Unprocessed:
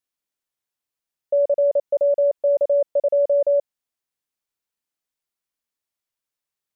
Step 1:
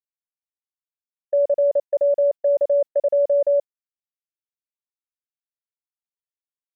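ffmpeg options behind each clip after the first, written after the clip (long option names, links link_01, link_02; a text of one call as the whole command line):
ffmpeg -i in.wav -af "agate=range=-36dB:threshold=-23dB:ratio=16:detection=peak" out.wav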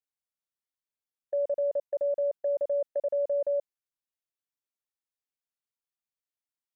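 ffmpeg -i in.wav -af "alimiter=limit=-21.5dB:level=0:latency=1:release=56,volume=-2dB" out.wav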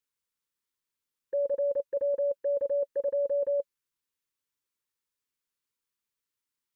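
ffmpeg -i in.wav -af "asuperstop=centerf=690:order=12:qfactor=2.4,volume=5.5dB" out.wav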